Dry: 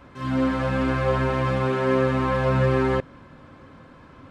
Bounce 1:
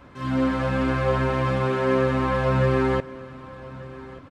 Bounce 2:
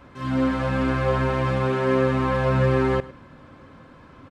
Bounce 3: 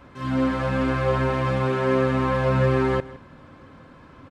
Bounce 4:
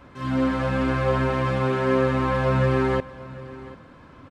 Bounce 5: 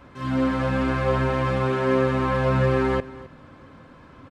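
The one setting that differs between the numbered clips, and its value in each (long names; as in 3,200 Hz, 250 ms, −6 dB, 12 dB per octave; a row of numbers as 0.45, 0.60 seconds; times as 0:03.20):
single-tap delay, delay time: 1,186, 107, 161, 742, 262 milliseconds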